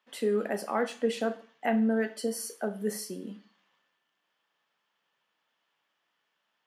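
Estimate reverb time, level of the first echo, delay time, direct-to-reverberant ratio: 0.40 s, none, none, 7.5 dB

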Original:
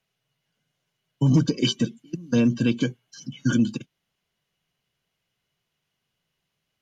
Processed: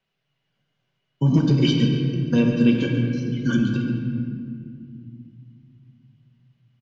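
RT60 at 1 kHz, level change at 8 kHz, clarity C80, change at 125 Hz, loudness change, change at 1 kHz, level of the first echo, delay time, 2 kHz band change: 1.8 s, n/a, 3.5 dB, +4.5 dB, +2.0 dB, +3.0 dB, -11.5 dB, 0.141 s, +3.0 dB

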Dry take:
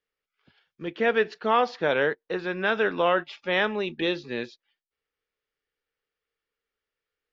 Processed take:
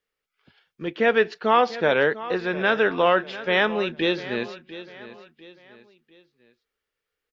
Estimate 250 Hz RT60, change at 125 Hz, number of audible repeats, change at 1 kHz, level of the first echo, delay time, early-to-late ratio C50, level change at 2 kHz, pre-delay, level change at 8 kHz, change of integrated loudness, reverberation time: none, +3.5 dB, 3, +3.5 dB, -15.5 dB, 0.697 s, none, +3.5 dB, none, n/a, +3.5 dB, none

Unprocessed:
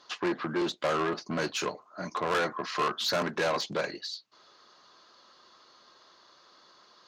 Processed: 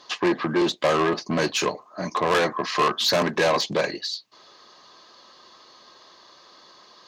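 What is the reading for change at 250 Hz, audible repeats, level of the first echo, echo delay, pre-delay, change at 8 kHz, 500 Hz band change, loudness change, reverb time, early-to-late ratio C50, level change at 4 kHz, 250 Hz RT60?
+8.0 dB, none, none, none, none, +8.0 dB, +8.0 dB, +7.5 dB, none, none, +8.0 dB, none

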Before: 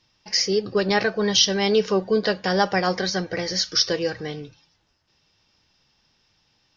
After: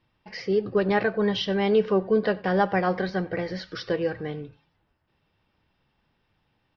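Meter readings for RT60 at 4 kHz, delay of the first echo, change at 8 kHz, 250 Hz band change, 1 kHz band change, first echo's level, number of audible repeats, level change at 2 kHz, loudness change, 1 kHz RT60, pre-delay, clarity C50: none, 92 ms, n/a, -0.5 dB, -2.0 dB, -22.5 dB, 1, -4.0 dB, -3.5 dB, none, none, none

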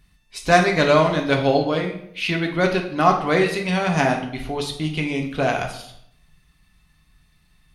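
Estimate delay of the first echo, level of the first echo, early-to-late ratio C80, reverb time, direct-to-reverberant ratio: none, none, 11.0 dB, 0.70 s, 2.0 dB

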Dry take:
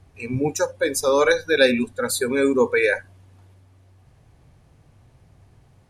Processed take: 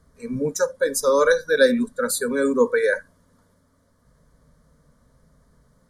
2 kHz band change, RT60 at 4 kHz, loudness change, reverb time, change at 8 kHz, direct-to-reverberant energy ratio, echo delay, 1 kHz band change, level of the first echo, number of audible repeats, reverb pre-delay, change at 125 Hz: -2.0 dB, none, -0.5 dB, none, +0.5 dB, none, none, -0.5 dB, none, none, none, n/a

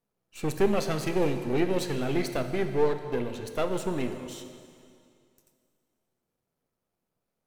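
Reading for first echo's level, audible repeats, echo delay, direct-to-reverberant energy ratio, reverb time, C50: none, none, none, 7.5 dB, 2.4 s, 8.5 dB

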